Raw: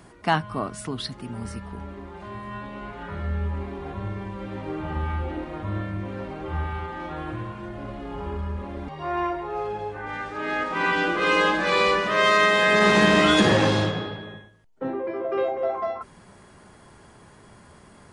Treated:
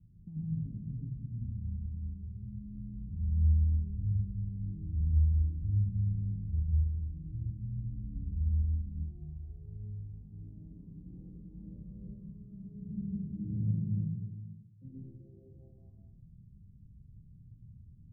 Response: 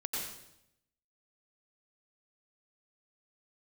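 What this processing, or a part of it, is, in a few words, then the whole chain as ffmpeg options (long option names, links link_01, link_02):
club heard from the street: -filter_complex "[0:a]asettb=1/sr,asplit=3[link_01][link_02][link_03];[link_01]atrim=end=13.074[link_04];[link_02]atrim=start=13.07:end=14.85,asetpts=PTS-STARTPTS,afade=type=in:duration=0.004:curve=qsin,afade=type=out:start_time=1.776:duration=0.004:curve=qsin,highpass=98[link_05];[link_03]atrim=start=14.846[link_06];[link_04][link_05]acrossfade=duration=0.004:curve1=hsin:curve2=qsin[link_07];[link_07][link_06]acrossfade=duration=0.004:curve1=qsin:curve2=hsin,alimiter=limit=-15.5dB:level=0:latency=1:release=39,lowpass=frequency=140:width=0.5412,lowpass=frequency=140:width=1.3066[link_08];[1:a]atrim=start_sample=2205[link_09];[link_08][link_09]afir=irnorm=-1:irlink=0"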